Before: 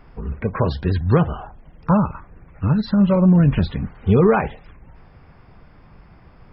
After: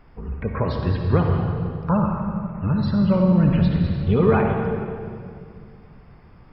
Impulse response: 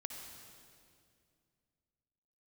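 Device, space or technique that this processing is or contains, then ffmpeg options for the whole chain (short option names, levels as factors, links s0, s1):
stairwell: -filter_complex "[1:a]atrim=start_sample=2205[s0];[0:a][s0]afir=irnorm=-1:irlink=0,asettb=1/sr,asplit=3[s1][s2][s3];[s1]atrim=end=3.844[s4];[s2]atrim=start=3.84:end=4.42,asetpts=PTS-STARTPTS,afade=t=in:d=0.004:c=qsin,afade=t=out:st=0.576:d=0.004:c=qsin,aemphasis=mode=production:type=cd[s5];[s3]atrim=start=4.416[s6];[s4][s5]acrossfade=d=0.004:c1=hsin:c2=qsin[s7];[s7][s6]acrossfade=d=0.004:c1=qsin:c2=hsin"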